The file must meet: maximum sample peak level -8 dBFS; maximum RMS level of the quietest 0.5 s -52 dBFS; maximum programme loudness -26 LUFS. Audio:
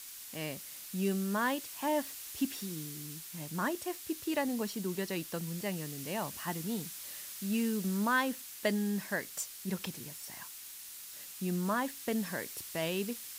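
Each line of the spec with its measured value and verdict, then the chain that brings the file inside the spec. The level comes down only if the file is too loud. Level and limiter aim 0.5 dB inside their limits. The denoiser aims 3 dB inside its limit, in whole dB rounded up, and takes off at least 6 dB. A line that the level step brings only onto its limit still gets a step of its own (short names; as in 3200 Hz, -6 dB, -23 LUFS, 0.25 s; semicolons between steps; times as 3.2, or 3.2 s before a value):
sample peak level -17.5 dBFS: OK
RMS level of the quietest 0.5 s -48 dBFS: fail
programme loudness -35.5 LUFS: OK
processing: denoiser 7 dB, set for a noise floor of -48 dBFS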